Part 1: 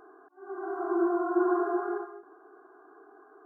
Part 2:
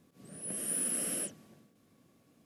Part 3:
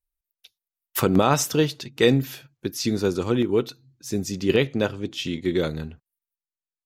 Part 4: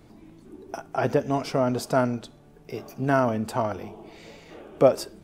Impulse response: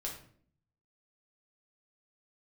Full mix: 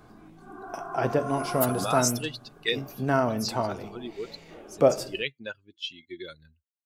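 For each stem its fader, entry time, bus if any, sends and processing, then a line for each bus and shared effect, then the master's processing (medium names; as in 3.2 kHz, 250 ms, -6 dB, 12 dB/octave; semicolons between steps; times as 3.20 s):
-2.0 dB, 0.00 s, no send, inverse Chebyshev high-pass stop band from 260 Hz
-4.5 dB, 0.95 s, no send, compression 2:1, threshold -45 dBFS, peak gain reduction 8 dB
-7.0 dB, 0.65 s, no send, expander on every frequency bin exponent 2; tilt shelf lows -8 dB, about 780 Hz
-4.0 dB, 0.00 s, send -9 dB, none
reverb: on, RT60 0.55 s, pre-delay 5 ms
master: none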